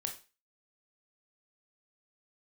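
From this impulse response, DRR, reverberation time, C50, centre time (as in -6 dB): 3.0 dB, 0.30 s, 10.5 dB, 15 ms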